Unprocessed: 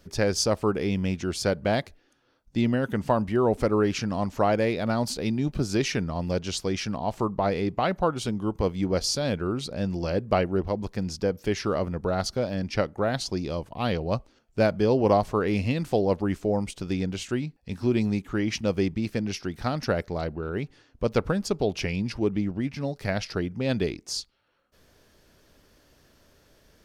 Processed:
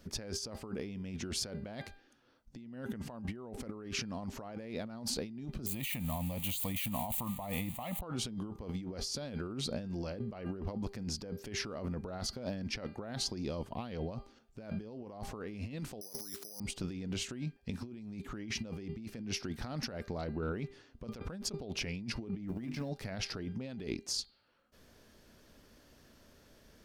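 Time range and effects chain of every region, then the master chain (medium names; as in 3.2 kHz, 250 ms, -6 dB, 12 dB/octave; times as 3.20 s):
5.66–8.01 s: zero-crossing glitches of -27 dBFS + treble shelf 6.1 kHz +6 dB + static phaser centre 1.5 kHz, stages 6
16.01–16.60 s: high-pass 370 Hz 6 dB/octave + careless resampling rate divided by 8×, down filtered, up zero stuff
22.48–22.89 s: companding laws mixed up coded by A + hum notches 50/100/150/200/250/300/350/400/450/500 Hz
whole clip: peaking EQ 230 Hz +6.5 dB 0.31 oct; de-hum 399 Hz, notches 12; compressor with a negative ratio -32 dBFS, ratio -1; trim -8.5 dB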